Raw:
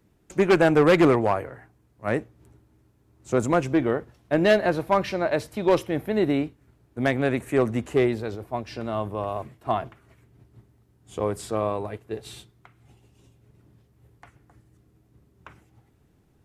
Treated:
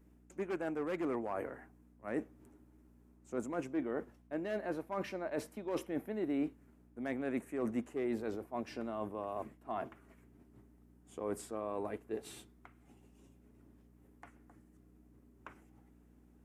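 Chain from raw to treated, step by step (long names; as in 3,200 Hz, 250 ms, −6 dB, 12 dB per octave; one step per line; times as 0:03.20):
low-shelf EQ 190 Hz −12 dB
reversed playback
downward compressor 8 to 1, threshold −32 dBFS, peak gain reduction 17 dB
reversed playback
mains hum 60 Hz, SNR 21 dB
graphic EQ with 10 bands 125 Hz −4 dB, 250 Hz +8 dB, 4,000 Hz −8 dB
level −4.5 dB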